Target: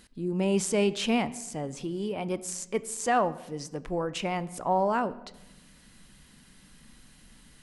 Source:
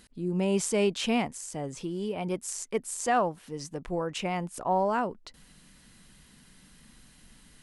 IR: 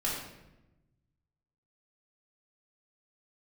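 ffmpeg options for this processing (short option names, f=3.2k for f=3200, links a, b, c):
-filter_complex "[0:a]asplit=2[a][b];[1:a]atrim=start_sample=2205,asetrate=39690,aresample=44100,lowpass=7k[c];[b][c]afir=irnorm=-1:irlink=0,volume=-20.5dB[d];[a][d]amix=inputs=2:normalize=0"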